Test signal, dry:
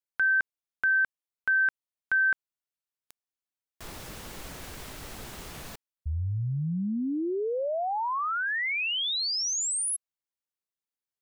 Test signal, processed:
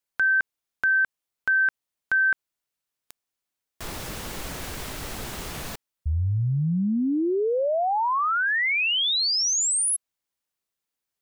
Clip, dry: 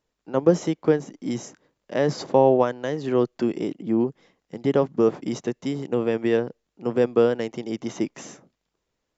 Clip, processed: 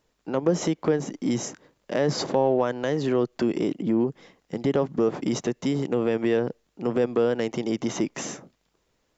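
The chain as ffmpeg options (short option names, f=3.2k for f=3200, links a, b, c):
-af "acompressor=threshold=-28dB:ratio=2.5:attack=0.34:release=158:knee=6:detection=peak,volume=7.5dB"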